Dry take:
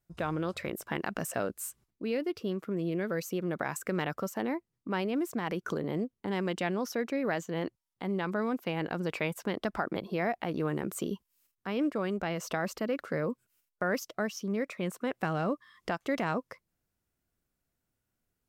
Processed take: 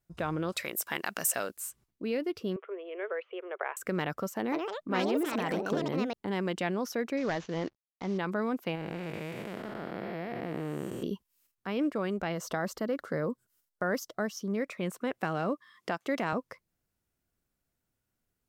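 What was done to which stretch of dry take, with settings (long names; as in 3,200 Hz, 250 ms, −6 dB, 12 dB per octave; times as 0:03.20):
0:00.52–0:01.57: spectral tilt +3.5 dB per octave
0:02.56–0:03.77: Chebyshev band-pass filter 390–3,200 Hz, order 5
0:04.34–0:06.52: delay with pitch and tempo change per echo 160 ms, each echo +5 semitones, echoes 2
0:07.17–0:08.18: variable-slope delta modulation 32 kbit/s
0:08.75–0:11.03: spectrum smeared in time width 452 ms
0:12.32–0:14.55: parametric band 2,500 Hz −10 dB 0.38 octaves
0:15.18–0:16.33: high-pass filter 160 Hz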